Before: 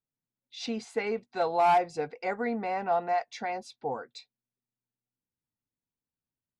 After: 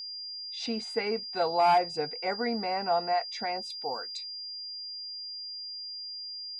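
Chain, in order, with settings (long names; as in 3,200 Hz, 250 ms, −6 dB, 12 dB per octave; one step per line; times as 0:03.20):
0:03.70–0:04.17: RIAA equalisation recording
steady tone 4,800 Hz −37 dBFS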